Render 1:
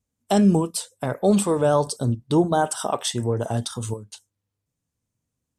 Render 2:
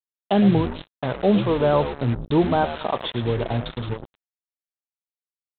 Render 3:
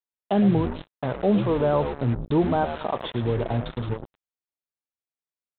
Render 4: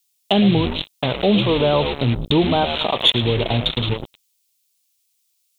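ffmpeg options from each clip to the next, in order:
-filter_complex "[0:a]asplit=5[a][b][c][d][e];[b]adelay=107,afreqshift=-81,volume=-11dB[f];[c]adelay=214,afreqshift=-162,volume=-19.6dB[g];[d]adelay=321,afreqshift=-243,volume=-28.3dB[h];[e]adelay=428,afreqshift=-324,volume=-36.9dB[i];[a][f][g][h][i]amix=inputs=5:normalize=0,aresample=8000,acrusher=bits=4:mix=0:aa=0.5,aresample=44100"
-filter_complex "[0:a]highshelf=f=2.9k:g=-10.5,asplit=2[a][b];[b]alimiter=limit=-17.5dB:level=0:latency=1,volume=-2dB[c];[a][c]amix=inputs=2:normalize=0,volume=-5dB"
-filter_complex "[0:a]asplit=2[a][b];[b]acompressor=threshold=-29dB:ratio=6,volume=0dB[c];[a][c]amix=inputs=2:normalize=0,aexciter=amount=5.3:drive=7.7:freq=2.4k,volume=2dB"

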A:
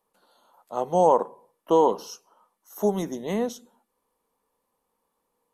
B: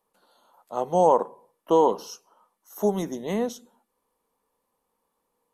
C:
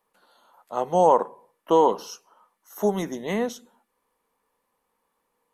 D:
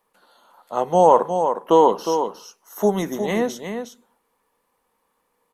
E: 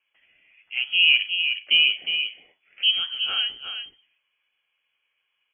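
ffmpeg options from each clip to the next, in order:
-af anull
-af "equalizer=f=1.9k:t=o:w=1.4:g=7"
-af "aecho=1:1:360:0.422,volume=4dB"
-af "flanger=delay=8.7:depth=2.7:regen=64:speed=1.8:shape=sinusoidal,lowpass=f=2.9k:t=q:w=0.5098,lowpass=f=2.9k:t=q:w=0.6013,lowpass=f=2.9k:t=q:w=0.9,lowpass=f=2.9k:t=q:w=2.563,afreqshift=-3400"

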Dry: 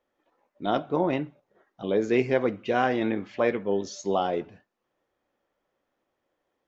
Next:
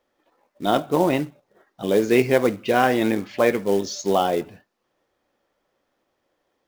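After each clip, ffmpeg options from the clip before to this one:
-af "equalizer=f=4.7k:t=o:w=0.9:g=4.5,acrusher=bits=5:mode=log:mix=0:aa=0.000001,volume=5.5dB"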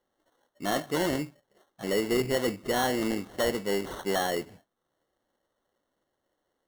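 -af "acrusher=samples=18:mix=1:aa=0.000001,asoftclip=type=tanh:threshold=-12dB,volume=-6.5dB"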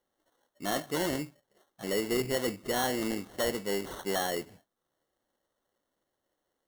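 -af "highshelf=f=4.7k:g=5,volume=-3.5dB"

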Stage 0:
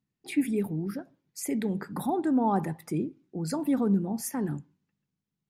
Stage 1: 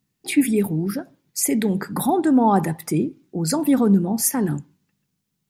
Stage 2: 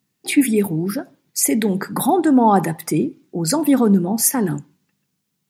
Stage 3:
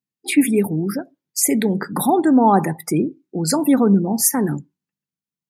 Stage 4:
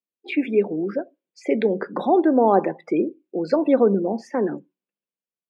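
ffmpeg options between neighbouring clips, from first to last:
-af "highshelf=f=3.6k:g=7.5,volume=8.5dB"
-af "highpass=f=180:p=1,volume=4dB"
-af "afftdn=nr=20:nf=-35"
-af "highpass=f=260:w=0.5412,highpass=f=260:w=1.3066,equalizer=f=270:t=q:w=4:g=-7,equalizer=f=540:t=q:w=4:g=6,equalizer=f=870:t=q:w=4:g=-8,equalizer=f=1.3k:t=q:w=4:g=-8,equalizer=f=1.9k:t=q:w=4:g=-9,lowpass=f=2.8k:w=0.5412,lowpass=f=2.8k:w=1.3066,dynaudnorm=f=220:g=5:m=4dB,volume=-1.5dB"

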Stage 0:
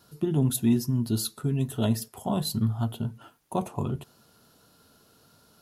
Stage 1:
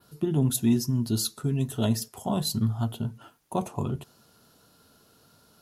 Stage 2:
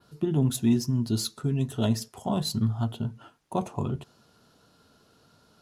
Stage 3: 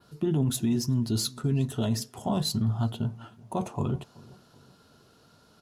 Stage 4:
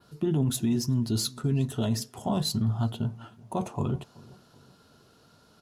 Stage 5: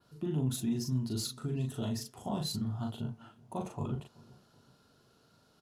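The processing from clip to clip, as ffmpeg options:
-af "adynamicequalizer=threshold=0.00282:dfrequency=6100:dqfactor=1.4:tfrequency=6100:tqfactor=1.4:attack=5:release=100:ratio=0.375:range=3:mode=boostabove:tftype=bell"
-af "adynamicsmooth=sensitivity=6.5:basefreq=8k"
-filter_complex "[0:a]alimiter=limit=-20dB:level=0:latency=1:release=12,asplit=2[a][b];[b]adelay=380,lowpass=f=1.9k:p=1,volume=-22dB,asplit=2[c][d];[d]adelay=380,lowpass=f=1.9k:p=1,volume=0.45,asplit=2[e][f];[f]adelay=380,lowpass=f=1.9k:p=1,volume=0.45[g];[a][c][e][g]amix=inputs=4:normalize=0,volume=1.5dB"
-af anull
-filter_complex "[0:a]asplit=2[a][b];[b]adelay=39,volume=-3.5dB[c];[a][c]amix=inputs=2:normalize=0,volume=-8.5dB"

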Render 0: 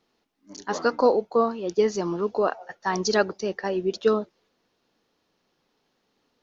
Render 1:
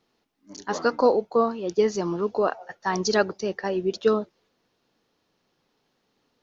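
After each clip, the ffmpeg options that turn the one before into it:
-af "equalizer=f=120:w=1.9:g=4"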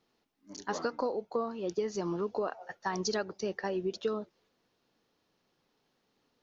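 -af "acompressor=threshold=-25dB:ratio=6,volume=-4dB"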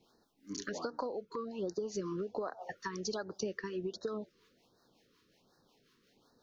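-filter_complex "[0:a]acompressor=threshold=-41dB:ratio=6,acrossover=split=520[a][b];[a]aeval=exprs='val(0)*(1-0.5/2+0.5/2*cos(2*PI*5.5*n/s))':c=same[c];[b]aeval=exprs='val(0)*(1-0.5/2-0.5/2*cos(2*PI*5.5*n/s))':c=same[d];[c][d]amix=inputs=2:normalize=0,afftfilt=real='re*(1-between(b*sr/1024,660*pow(2700/660,0.5+0.5*sin(2*PI*1.3*pts/sr))/1.41,660*pow(2700/660,0.5+0.5*sin(2*PI*1.3*pts/sr))*1.41))':imag='im*(1-between(b*sr/1024,660*pow(2700/660,0.5+0.5*sin(2*PI*1.3*pts/sr))/1.41,660*pow(2700/660,0.5+0.5*sin(2*PI*1.3*pts/sr))*1.41))':win_size=1024:overlap=0.75,volume=8.5dB"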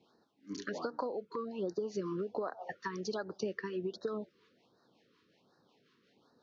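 -af "highpass=110,lowpass=4.1k,volume=1dB"

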